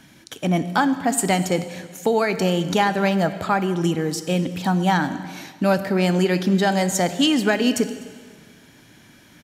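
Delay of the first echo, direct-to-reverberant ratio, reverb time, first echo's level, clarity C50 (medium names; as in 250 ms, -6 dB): 252 ms, 11.0 dB, 1.7 s, -23.5 dB, 12.0 dB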